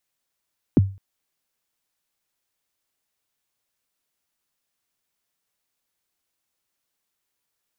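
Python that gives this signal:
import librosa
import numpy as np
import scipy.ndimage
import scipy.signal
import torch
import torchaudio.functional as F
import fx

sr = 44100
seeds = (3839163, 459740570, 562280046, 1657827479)

y = fx.drum_kick(sr, seeds[0], length_s=0.21, level_db=-8.0, start_hz=370.0, end_hz=97.0, sweep_ms=24.0, decay_s=0.34, click=False)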